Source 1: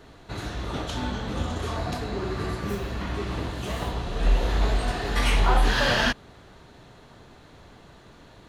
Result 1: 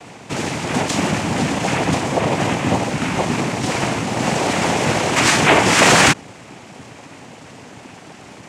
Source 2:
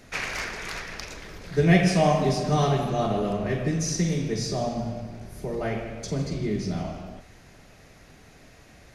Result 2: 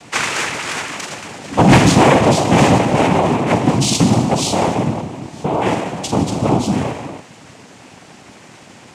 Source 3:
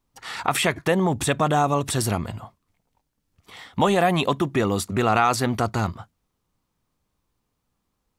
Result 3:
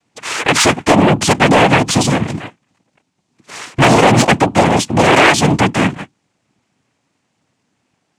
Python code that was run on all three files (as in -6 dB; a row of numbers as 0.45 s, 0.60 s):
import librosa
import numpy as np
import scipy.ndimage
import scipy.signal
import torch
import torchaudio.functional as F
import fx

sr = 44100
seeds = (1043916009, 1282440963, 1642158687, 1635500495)

y = fx.noise_vocoder(x, sr, seeds[0], bands=4)
y = fx.fold_sine(y, sr, drive_db=7, ceiling_db=-4.5)
y = y * 10.0 ** (-3 / 20.0) / np.max(np.abs(y))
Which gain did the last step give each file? +1.5 dB, +1.5 dB, +1.5 dB